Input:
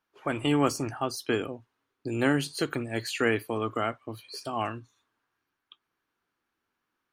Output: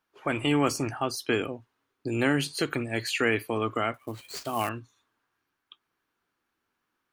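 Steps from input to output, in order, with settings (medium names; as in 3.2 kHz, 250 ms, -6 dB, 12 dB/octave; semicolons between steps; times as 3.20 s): dynamic bell 2.3 kHz, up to +5 dB, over -48 dBFS, Q 2.1; in parallel at -0.5 dB: peak limiter -18.5 dBFS, peak gain reduction 9 dB; 3.94–4.69 s: on the sum: sample-rate reducer 12 kHz, jitter 20%; trim -4 dB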